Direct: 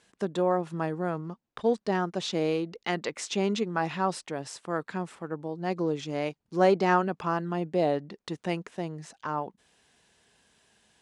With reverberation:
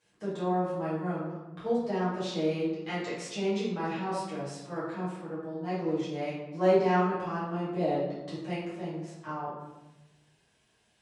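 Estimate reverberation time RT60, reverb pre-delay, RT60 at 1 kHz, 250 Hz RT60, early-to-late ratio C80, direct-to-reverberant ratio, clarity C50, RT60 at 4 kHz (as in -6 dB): 1.0 s, 6 ms, 0.95 s, 1.4 s, 4.5 dB, -11.0 dB, 1.0 dB, 0.70 s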